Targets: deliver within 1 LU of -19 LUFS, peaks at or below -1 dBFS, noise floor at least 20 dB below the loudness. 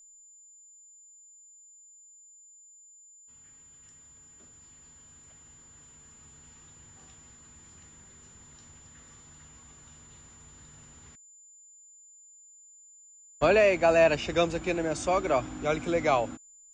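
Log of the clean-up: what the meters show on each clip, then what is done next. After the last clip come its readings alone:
steady tone 7.1 kHz; tone level -52 dBFS; loudness -25.5 LUFS; peak level -10.5 dBFS; loudness target -19.0 LUFS
-> band-stop 7.1 kHz, Q 30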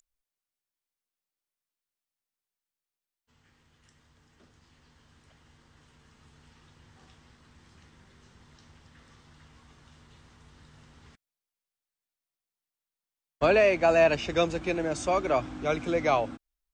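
steady tone not found; loudness -25.5 LUFS; peak level -10.5 dBFS; loudness target -19.0 LUFS
-> trim +6.5 dB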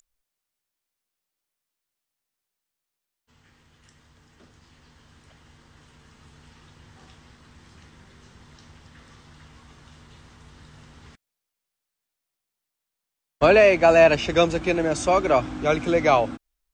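loudness -19.0 LUFS; peak level -4.0 dBFS; noise floor -85 dBFS

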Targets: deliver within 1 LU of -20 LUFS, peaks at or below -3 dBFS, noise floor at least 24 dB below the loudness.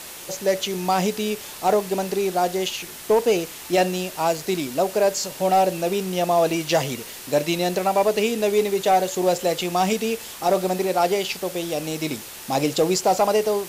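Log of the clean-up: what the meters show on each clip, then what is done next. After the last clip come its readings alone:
noise floor -38 dBFS; noise floor target -47 dBFS; loudness -22.5 LUFS; peak level -10.0 dBFS; loudness target -20.0 LUFS
-> noise print and reduce 9 dB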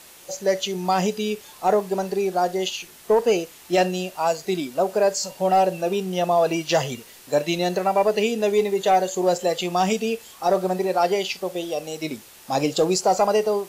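noise floor -47 dBFS; loudness -22.5 LUFS; peak level -10.0 dBFS; loudness target -20.0 LUFS
-> trim +2.5 dB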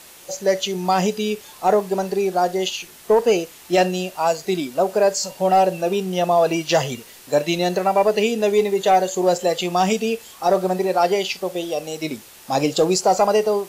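loudness -20.0 LUFS; peak level -7.5 dBFS; noise floor -44 dBFS

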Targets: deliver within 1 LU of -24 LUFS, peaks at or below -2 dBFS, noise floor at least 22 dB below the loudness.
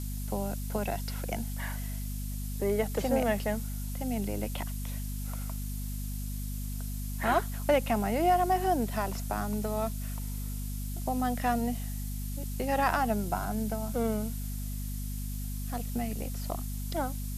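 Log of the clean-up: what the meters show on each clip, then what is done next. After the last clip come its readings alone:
hum 50 Hz; highest harmonic 250 Hz; hum level -33 dBFS; noise floor -35 dBFS; noise floor target -55 dBFS; loudness -32.5 LUFS; peak level -13.5 dBFS; loudness target -24.0 LUFS
-> de-hum 50 Hz, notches 5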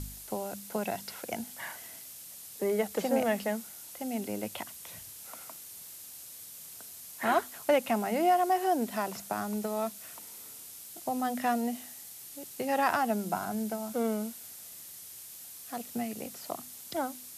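hum not found; noise floor -47 dBFS; noise floor target -55 dBFS
-> noise print and reduce 8 dB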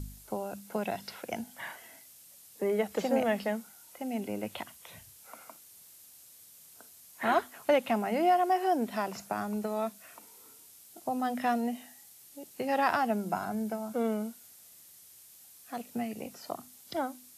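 noise floor -55 dBFS; loudness -32.5 LUFS; peak level -14.0 dBFS; loudness target -24.0 LUFS
-> trim +8.5 dB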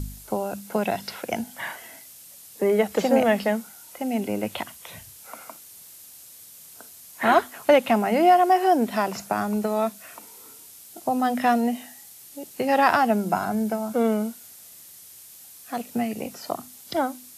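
loudness -24.0 LUFS; peak level -5.5 dBFS; noise floor -47 dBFS

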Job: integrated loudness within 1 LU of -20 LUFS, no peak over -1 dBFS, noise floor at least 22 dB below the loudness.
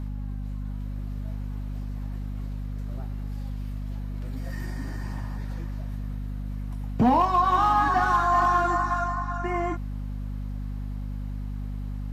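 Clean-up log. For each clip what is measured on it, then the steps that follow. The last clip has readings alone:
hum 50 Hz; highest harmonic 250 Hz; hum level -29 dBFS; loudness -28.0 LUFS; peak level -12.0 dBFS; loudness target -20.0 LUFS
-> hum notches 50/100/150/200/250 Hz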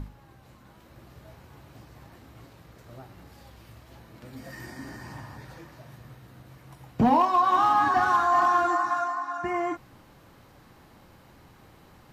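hum not found; loudness -23.0 LUFS; peak level -11.0 dBFS; loudness target -20.0 LUFS
-> trim +3 dB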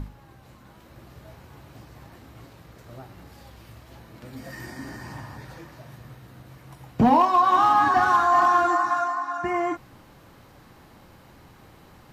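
loudness -20.0 LUFS; peak level -8.0 dBFS; noise floor -52 dBFS

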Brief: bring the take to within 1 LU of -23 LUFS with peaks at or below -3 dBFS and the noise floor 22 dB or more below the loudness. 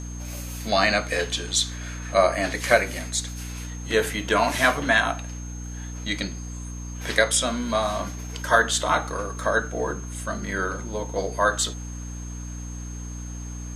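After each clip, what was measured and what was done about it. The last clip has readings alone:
hum 60 Hz; highest harmonic 300 Hz; hum level -32 dBFS; steady tone 6.4 kHz; tone level -42 dBFS; loudness -24.0 LUFS; peak level -2.5 dBFS; loudness target -23.0 LUFS
-> de-hum 60 Hz, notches 5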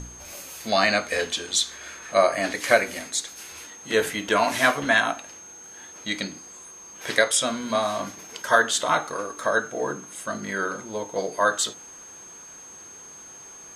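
hum not found; steady tone 6.4 kHz; tone level -42 dBFS
-> band-stop 6.4 kHz, Q 30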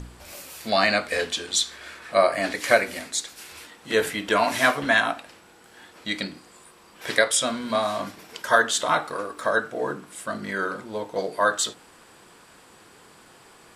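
steady tone not found; loudness -24.0 LUFS; peak level -2.5 dBFS; loudness target -23.0 LUFS
-> trim +1 dB; peak limiter -3 dBFS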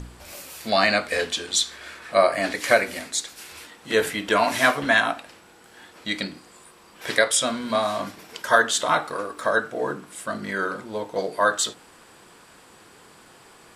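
loudness -23.0 LUFS; peak level -3.0 dBFS; noise floor -51 dBFS

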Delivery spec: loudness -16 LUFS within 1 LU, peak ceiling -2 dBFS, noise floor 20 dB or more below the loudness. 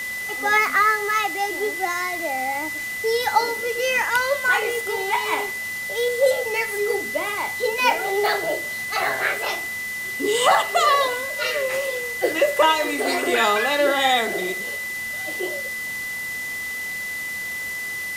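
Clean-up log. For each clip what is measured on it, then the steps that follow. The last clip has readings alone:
steady tone 2 kHz; tone level -27 dBFS; noise floor -30 dBFS; noise floor target -42 dBFS; loudness -22.0 LUFS; peak level -5.5 dBFS; loudness target -16.0 LUFS
-> band-stop 2 kHz, Q 30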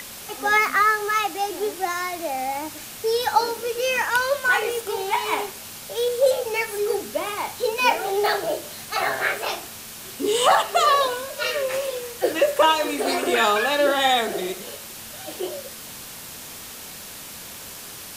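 steady tone not found; noise floor -38 dBFS; noise floor target -43 dBFS
-> noise reduction 6 dB, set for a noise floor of -38 dBFS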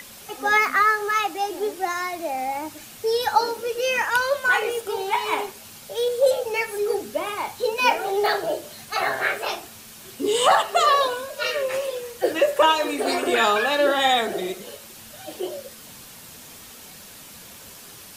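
noise floor -43 dBFS; loudness -22.5 LUFS; peak level -6.0 dBFS; loudness target -16.0 LUFS
-> trim +6.5 dB; peak limiter -2 dBFS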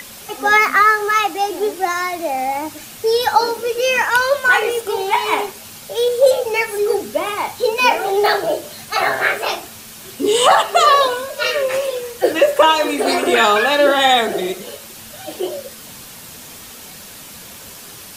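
loudness -16.0 LUFS; peak level -2.0 dBFS; noise floor -37 dBFS

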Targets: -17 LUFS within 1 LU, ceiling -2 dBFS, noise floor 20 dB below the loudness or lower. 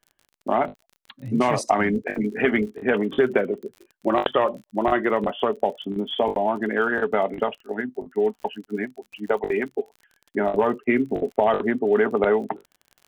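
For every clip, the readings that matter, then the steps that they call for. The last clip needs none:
tick rate 42 per s; loudness -24.0 LUFS; peak level -4.0 dBFS; loudness target -17.0 LUFS
-> de-click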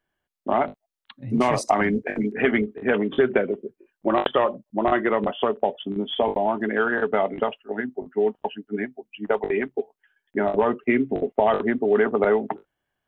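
tick rate 0.076 per s; loudness -24.0 LUFS; peak level -4.0 dBFS; loudness target -17.0 LUFS
-> trim +7 dB; peak limiter -2 dBFS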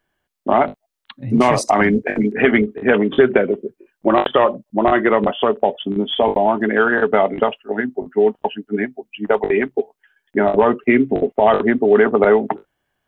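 loudness -17.0 LUFS; peak level -2.0 dBFS; noise floor -76 dBFS

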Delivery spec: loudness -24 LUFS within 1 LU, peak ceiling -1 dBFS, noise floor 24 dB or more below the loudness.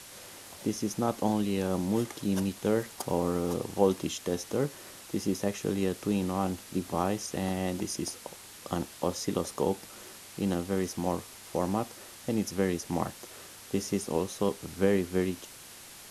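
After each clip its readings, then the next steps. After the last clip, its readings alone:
noise floor -49 dBFS; noise floor target -56 dBFS; loudness -31.5 LUFS; peak level -9.0 dBFS; loudness target -24.0 LUFS
-> noise print and reduce 7 dB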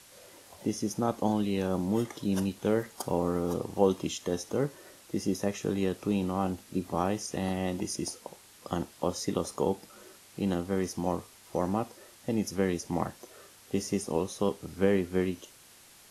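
noise floor -56 dBFS; loudness -31.5 LUFS; peak level -9.0 dBFS; loudness target -24.0 LUFS
-> trim +7.5 dB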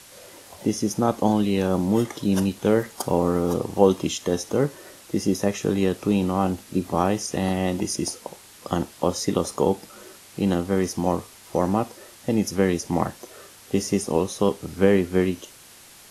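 loudness -24.0 LUFS; peak level -1.5 dBFS; noise floor -48 dBFS

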